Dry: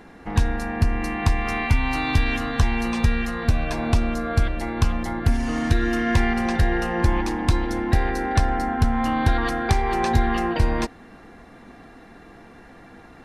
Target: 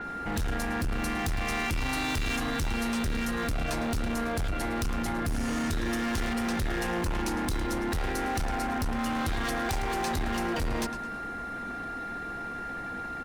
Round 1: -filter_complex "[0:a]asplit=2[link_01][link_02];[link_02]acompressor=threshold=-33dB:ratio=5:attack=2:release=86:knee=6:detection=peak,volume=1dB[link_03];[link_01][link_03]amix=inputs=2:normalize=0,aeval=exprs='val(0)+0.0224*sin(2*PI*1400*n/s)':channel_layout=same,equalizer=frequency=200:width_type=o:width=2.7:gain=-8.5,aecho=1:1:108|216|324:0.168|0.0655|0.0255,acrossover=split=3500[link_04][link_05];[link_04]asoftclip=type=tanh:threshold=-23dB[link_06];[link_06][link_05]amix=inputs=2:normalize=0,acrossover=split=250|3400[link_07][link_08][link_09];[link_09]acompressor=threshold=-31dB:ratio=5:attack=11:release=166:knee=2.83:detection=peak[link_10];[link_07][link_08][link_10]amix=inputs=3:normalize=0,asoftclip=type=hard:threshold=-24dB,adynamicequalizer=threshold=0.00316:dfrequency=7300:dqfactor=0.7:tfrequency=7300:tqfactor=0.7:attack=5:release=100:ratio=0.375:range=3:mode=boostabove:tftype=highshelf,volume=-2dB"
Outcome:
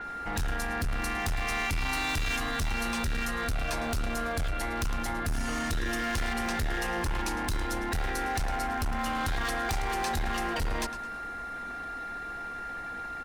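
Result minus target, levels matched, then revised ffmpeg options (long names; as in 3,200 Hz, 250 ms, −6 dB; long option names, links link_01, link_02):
250 Hz band −5.0 dB
-filter_complex "[0:a]asplit=2[link_01][link_02];[link_02]acompressor=threshold=-33dB:ratio=5:attack=2:release=86:knee=6:detection=peak,volume=1dB[link_03];[link_01][link_03]amix=inputs=2:normalize=0,aeval=exprs='val(0)+0.0224*sin(2*PI*1400*n/s)':channel_layout=same,aecho=1:1:108|216|324:0.168|0.0655|0.0255,acrossover=split=3500[link_04][link_05];[link_04]asoftclip=type=tanh:threshold=-23dB[link_06];[link_06][link_05]amix=inputs=2:normalize=0,acrossover=split=250|3400[link_07][link_08][link_09];[link_09]acompressor=threshold=-31dB:ratio=5:attack=11:release=166:knee=2.83:detection=peak[link_10];[link_07][link_08][link_10]amix=inputs=3:normalize=0,asoftclip=type=hard:threshold=-24dB,adynamicequalizer=threshold=0.00316:dfrequency=7300:dqfactor=0.7:tfrequency=7300:tqfactor=0.7:attack=5:release=100:ratio=0.375:range=3:mode=boostabove:tftype=highshelf,volume=-2dB"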